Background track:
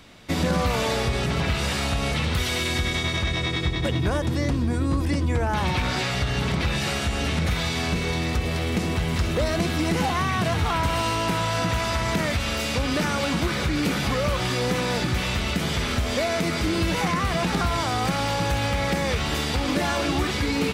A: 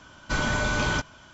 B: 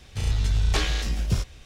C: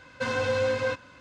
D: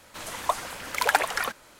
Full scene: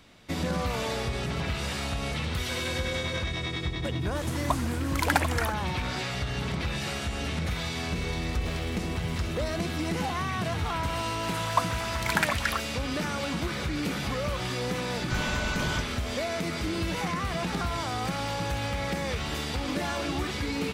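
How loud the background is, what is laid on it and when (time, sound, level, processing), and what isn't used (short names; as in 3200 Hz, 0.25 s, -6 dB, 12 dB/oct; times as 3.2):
background track -6.5 dB
2.29 add C -10.5 dB
4.01 add D -3 dB
7.72 add B -15 dB + decimation joined by straight lines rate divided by 4×
11.08 add D -5 dB + LFO high-pass saw up 8.3 Hz 690–4100 Hz
14.8 add A -6 dB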